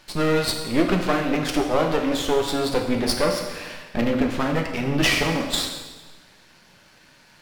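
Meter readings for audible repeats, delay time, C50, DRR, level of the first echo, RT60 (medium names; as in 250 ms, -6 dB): no echo, no echo, 5.5 dB, 2.0 dB, no echo, 1.3 s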